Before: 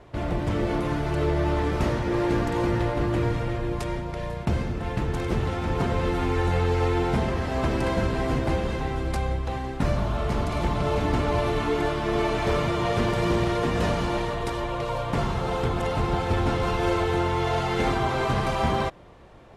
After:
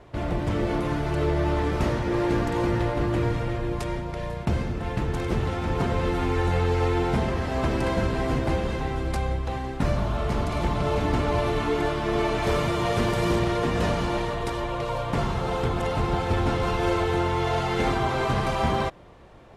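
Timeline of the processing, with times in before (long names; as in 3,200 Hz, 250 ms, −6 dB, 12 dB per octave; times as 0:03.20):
0:12.43–0:13.39: high-shelf EQ 7,700 Hz +7.5 dB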